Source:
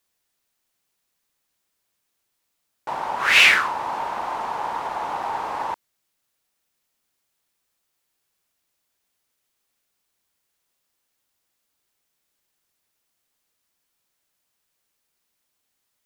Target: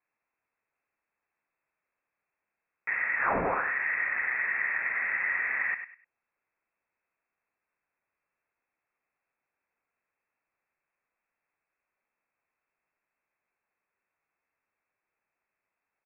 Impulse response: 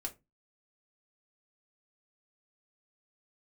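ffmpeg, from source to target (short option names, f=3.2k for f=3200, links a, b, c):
-filter_complex "[0:a]highpass=f=100:w=0.5412,highpass=f=100:w=1.3066,asplit=2[a][b];[b]adelay=100,lowpass=f=1.7k:p=1,volume=-9dB,asplit=2[c][d];[d]adelay=100,lowpass=f=1.7k:p=1,volume=0.28,asplit=2[e][f];[f]adelay=100,lowpass=f=1.7k:p=1,volume=0.28[g];[a][c][e][g]amix=inputs=4:normalize=0,acompressor=threshold=-22dB:ratio=4,lowpass=f=2.4k:t=q:w=0.5098,lowpass=f=2.4k:t=q:w=0.6013,lowpass=f=2.4k:t=q:w=0.9,lowpass=f=2.4k:t=q:w=2.563,afreqshift=-2800,volume=-2dB"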